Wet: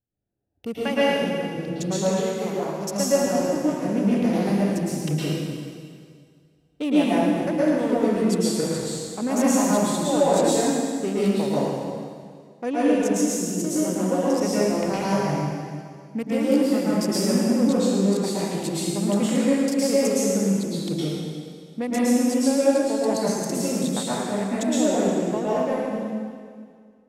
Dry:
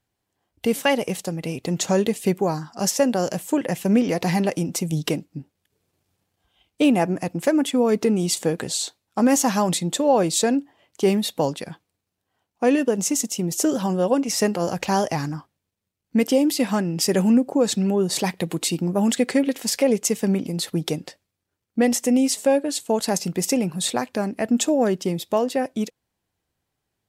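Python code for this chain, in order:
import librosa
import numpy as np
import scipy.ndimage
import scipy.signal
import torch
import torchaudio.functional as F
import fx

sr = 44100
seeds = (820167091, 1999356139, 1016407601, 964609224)

y = fx.wiener(x, sr, points=41)
y = fx.low_shelf(y, sr, hz=270.0, db=-10.5, at=(1.96, 2.79), fade=0.02)
y = fx.rev_plate(y, sr, seeds[0], rt60_s=2.0, hf_ratio=0.95, predelay_ms=100, drr_db=-9.5)
y = F.gain(torch.from_numpy(y), -9.0).numpy()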